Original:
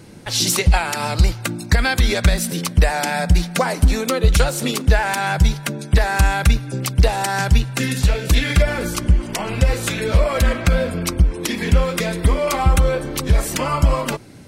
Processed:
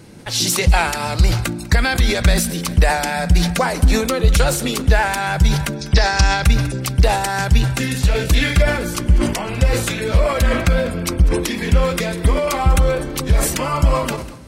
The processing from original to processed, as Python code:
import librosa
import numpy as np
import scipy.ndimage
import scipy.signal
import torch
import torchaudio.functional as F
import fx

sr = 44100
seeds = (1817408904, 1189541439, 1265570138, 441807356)

p1 = fx.lowpass_res(x, sr, hz=5400.0, q=5.1, at=(5.76, 6.44))
p2 = p1 + fx.echo_feedback(p1, sr, ms=197, feedback_pct=59, wet_db=-23, dry=0)
y = fx.sustainer(p2, sr, db_per_s=67.0)